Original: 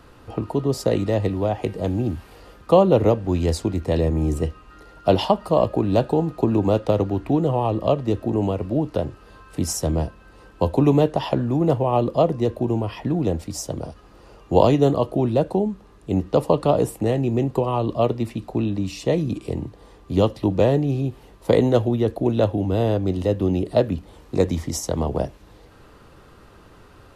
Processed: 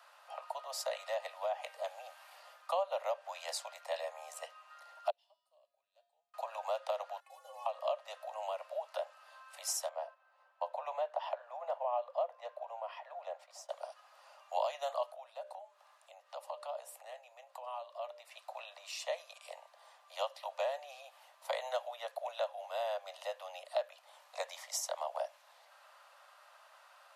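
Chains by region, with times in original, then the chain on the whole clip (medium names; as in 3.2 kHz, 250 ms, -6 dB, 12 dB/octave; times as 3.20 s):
5.10–6.34 s: amplifier tone stack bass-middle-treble 10-0-1 + feedback comb 140 Hz, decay 1 s, harmonics odd, mix 80%
7.20–7.66 s: CVSD coder 64 kbps + inharmonic resonator 260 Hz, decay 0.21 s, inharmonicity 0.008
9.89–13.69 s: low-pass 1.2 kHz 6 dB/octave + gate -45 dBFS, range -6 dB
15.11–18.32 s: hum notches 60/120/180/240/300/360/420/480/540/600 Hz + compression 2:1, threshold -38 dBFS
whole clip: steep high-pass 570 Hz 96 dB/octave; compression 2.5:1, threshold -27 dBFS; trim -6.5 dB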